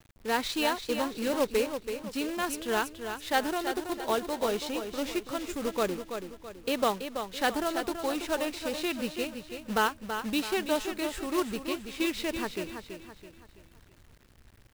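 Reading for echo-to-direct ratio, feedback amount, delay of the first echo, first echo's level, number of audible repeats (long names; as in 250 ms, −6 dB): −7.0 dB, 41%, 330 ms, −8.0 dB, 4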